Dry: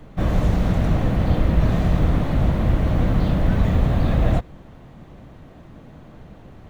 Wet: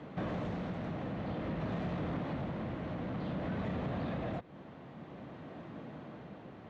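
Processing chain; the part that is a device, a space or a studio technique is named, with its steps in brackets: AM radio (band-pass 170–3700 Hz; compression 4:1, threshold -33 dBFS, peak gain reduction 11 dB; saturation -28.5 dBFS, distortion -18 dB; tremolo 0.53 Hz, depth 29%)

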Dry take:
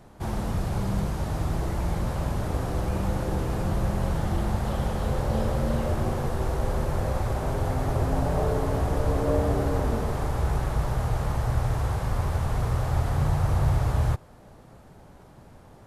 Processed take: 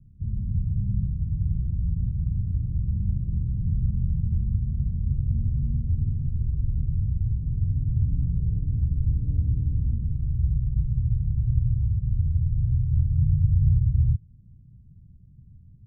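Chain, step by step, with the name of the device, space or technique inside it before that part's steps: the neighbour's flat through the wall (low-pass 170 Hz 24 dB/octave; peaking EQ 95 Hz +4 dB 0.82 oct); trim +1 dB

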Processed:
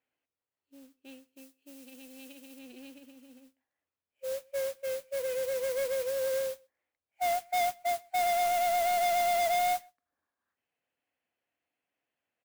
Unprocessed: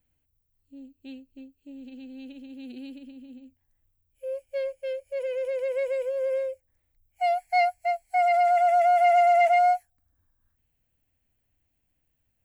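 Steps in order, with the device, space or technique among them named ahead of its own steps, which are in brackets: carbon microphone (band-pass 460–3000 Hz; saturation -26 dBFS, distortion -9 dB; modulation noise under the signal 12 dB); 1.28–2.59 s: treble shelf 3.5 kHz +8 dB; echo from a far wall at 22 m, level -28 dB

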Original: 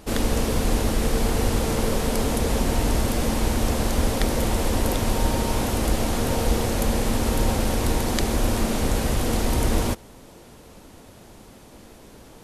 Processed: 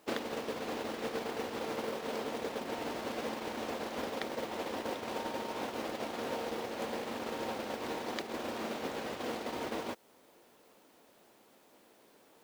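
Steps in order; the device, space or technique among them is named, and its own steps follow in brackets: baby monitor (band-pass 330–3900 Hz; compression 8:1, threshold -34 dBFS, peak gain reduction 11 dB; white noise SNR 19 dB; gate -36 dBFS, range -16 dB); trim +3 dB

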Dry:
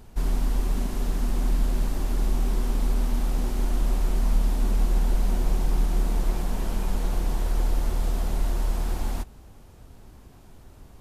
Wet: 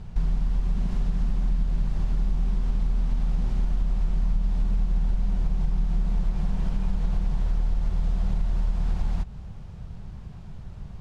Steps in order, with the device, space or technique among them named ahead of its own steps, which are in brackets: jukebox (low-pass 5 kHz 12 dB/octave; resonant low shelf 220 Hz +7 dB, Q 3; compression 5:1, threshold -23 dBFS, peak gain reduction 13 dB); trim +2 dB

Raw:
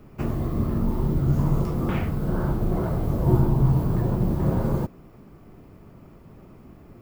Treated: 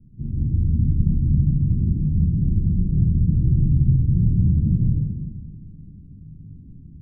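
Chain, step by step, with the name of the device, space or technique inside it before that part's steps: club heard from the street (peak limiter -16 dBFS, peak gain reduction 10 dB; low-pass 210 Hz 24 dB/octave; reverberation RT60 1.2 s, pre-delay 119 ms, DRR -5 dB)

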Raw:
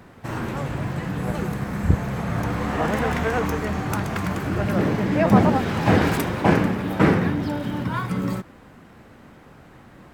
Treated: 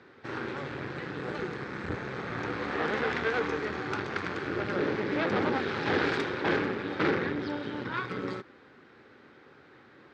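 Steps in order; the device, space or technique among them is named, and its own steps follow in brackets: guitar amplifier (valve stage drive 19 dB, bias 0.75; tone controls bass -9 dB, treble +12 dB; cabinet simulation 98–3800 Hz, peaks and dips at 190 Hz -6 dB, 390 Hz +5 dB, 670 Hz -9 dB, 990 Hz -5 dB, 1.5 kHz +3 dB, 2.9 kHz -5 dB)

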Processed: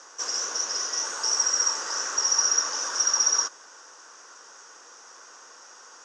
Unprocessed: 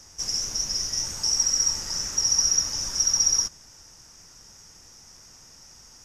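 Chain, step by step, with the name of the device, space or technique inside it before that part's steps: phone speaker on a table (cabinet simulation 360–7100 Hz, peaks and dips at 490 Hz +4 dB, 1.1 kHz +9 dB, 1.5 kHz +9 dB, 2.2 kHz -5 dB, 5.2 kHz -9 dB); trim +5 dB

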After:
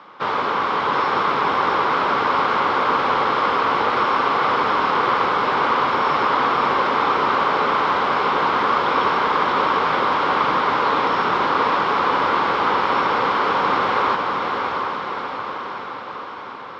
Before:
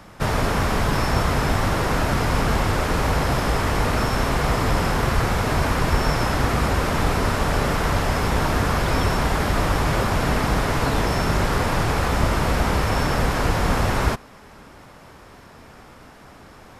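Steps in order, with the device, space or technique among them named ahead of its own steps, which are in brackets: phone earpiece (cabinet simulation 490–3500 Hz, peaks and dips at 660 Hz -10 dB, 1.1 kHz +5 dB, 1.8 kHz -8 dB, 2.6 kHz -6 dB); echo that smears into a reverb 647 ms, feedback 63%, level -3.5 dB; trim +5.5 dB

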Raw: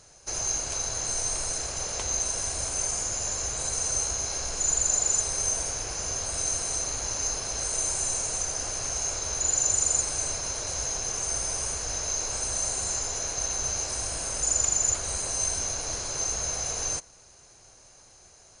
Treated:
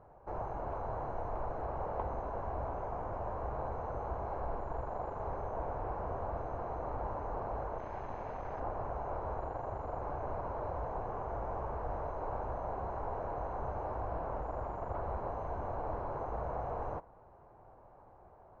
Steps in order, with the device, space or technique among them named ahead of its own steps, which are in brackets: 7.78–8.60 s: high-order bell 3.5 kHz +9 dB 2.3 oct; overdriven synthesiser ladder filter (saturation -23 dBFS, distortion -12 dB; four-pole ladder low-pass 1.1 kHz, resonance 45%); trim +8.5 dB

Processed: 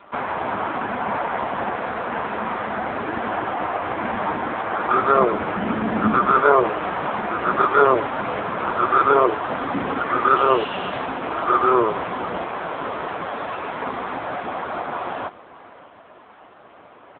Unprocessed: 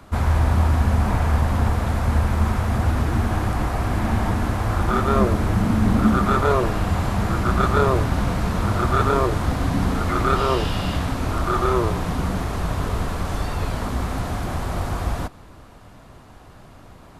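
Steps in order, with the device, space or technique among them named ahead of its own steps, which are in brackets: satellite phone (band-pass 390–3200 Hz; delay 585 ms -19 dB; trim +7.5 dB; AMR-NB 5.9 kbps 8 kHz)

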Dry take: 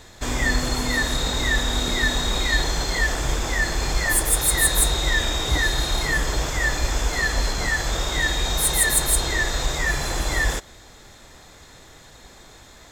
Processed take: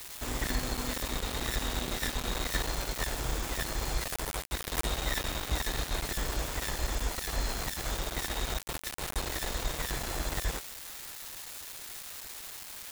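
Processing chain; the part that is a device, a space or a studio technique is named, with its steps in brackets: budget class-D amplifier (dead-time distortion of 0.29 ms; zero-crossing glitches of -14.5 dBFS); trim -9 dB

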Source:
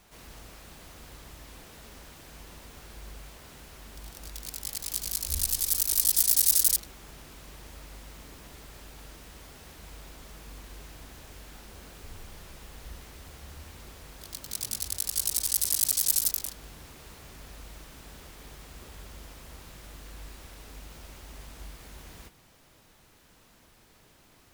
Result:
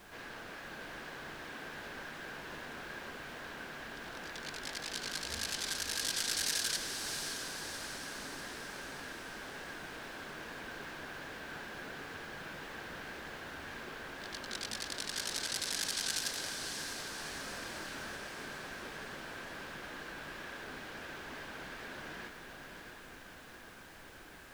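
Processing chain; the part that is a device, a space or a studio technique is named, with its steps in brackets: horn gramophone (band-pass 220–3500 Hz; peaking EQ 1.6 kHz +11.5 dB 0.23 oct; wow and flutter; pink noise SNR 15 dB); 17.16–18.16 s: doubling 25 ms -2.5 dB; echo that smears into a reverb 631 ms, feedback 56%, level -6 dB; trim +4 dB

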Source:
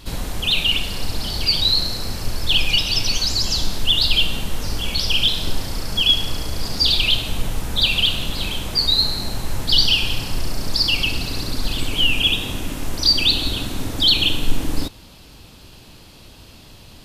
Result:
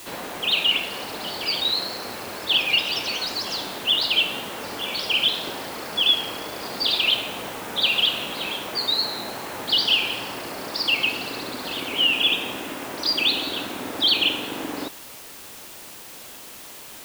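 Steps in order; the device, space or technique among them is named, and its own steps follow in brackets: wax cylinder (band-pass 380–2600 Hz; wow and flutter; white noise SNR 16 dB); trim +3 dB

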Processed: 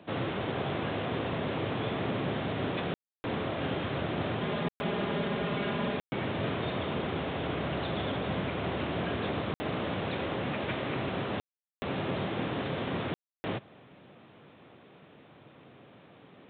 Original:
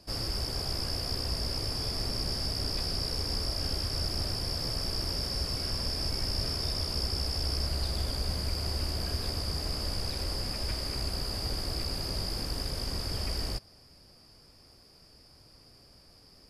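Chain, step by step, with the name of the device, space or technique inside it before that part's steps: call with lost packets (high-pass 130 Hz 24 dB/octave; resampled via 8 kHz; lost packets of 60 ms bursts); 4.41–5.97 s: comb 4.9 ms, depth 65%; trim +8.5 dB

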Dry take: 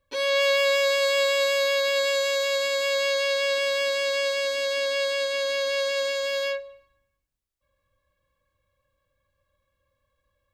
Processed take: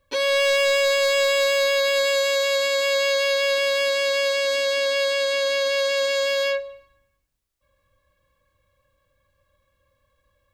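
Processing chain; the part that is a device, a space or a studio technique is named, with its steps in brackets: clipper into limiter (hard clipper -18.5 dBFS, distortion -19 dB; peak limiter -21.5 dBFS, peak gain reduction 3 dB); trim +6.5 dB

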